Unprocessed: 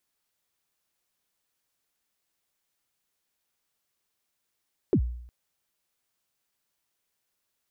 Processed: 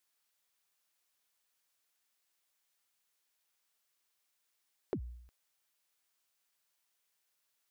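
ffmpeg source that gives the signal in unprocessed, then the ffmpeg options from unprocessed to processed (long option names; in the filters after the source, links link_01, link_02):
-f lavfi -i "aevalsrc='0.158*pow(10,-3*t/0.7)*sin(2*PI*(450*0.077/log(60/450)*(exp(log(60/450)*min(t,0.077)/0.077)-1)+60*max(t-0.077,0)))':duration=0.36:sample_rate=44100"
-af "lowshelf=frequency=450:gain=-12,acompressor=threshold=-34dB:ratio=6"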